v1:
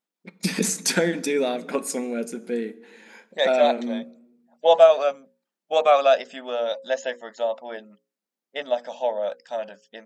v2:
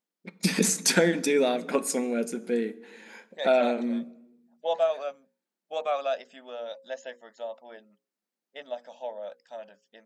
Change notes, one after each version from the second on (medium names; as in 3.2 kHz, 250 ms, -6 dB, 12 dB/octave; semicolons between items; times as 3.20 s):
second voice -11.5 dB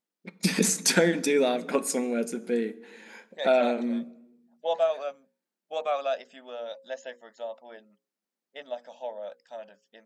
no change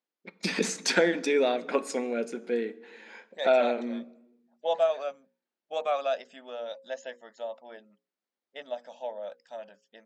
first voice: add band-pass 300–4700 Hz